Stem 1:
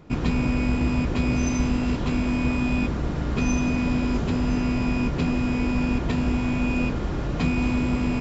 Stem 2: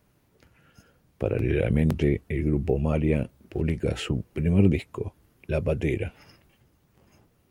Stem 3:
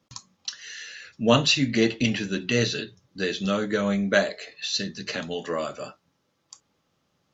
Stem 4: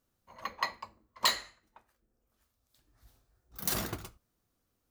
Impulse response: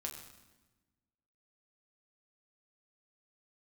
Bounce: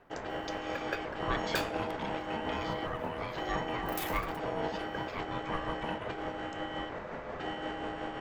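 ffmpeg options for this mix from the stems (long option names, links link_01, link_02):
-filter_complex "[0:a]tremolo=f=5.6:d=0.37,volume=-0.5dB[link_01];[1:a]aecho=1:1:2.9:0.65,acrossover=split=140|3000[link_02][link_03][link_04];[link_03]acompressor=threshold=-27dB:ratio=6[link_05];[link_02][link_05][link_04]amix=inputs=3:normalize=0,volume=0dB,asplit=2[link_06][link_07];[2:a]volume=0.5dB[link_08];[3:a]crystalizer=i=1:c=0,acompressor=mode=upward:threshold=-45dB:ratio=2.5,adelay=300,volume=1dB[link_09];[link_07]apad=whole_len=323463[link_10];[link_08][link_10]sidechaincompress=threshold=-29dB:ratio=8:attack=7.4:release=925[link_11];[link_01][link_06][link_11][link_09]amix=inputs=4:normalize=0,acrossover=split=550 2100:gain=0.251 1 0.2[link_12][link_13][link_14];[link_12][link_13][link_14]amix=inputs=3:normalize=0,aeval=exprs='val(0)*sin(2*PI*560*n/s)':channel_layout=same"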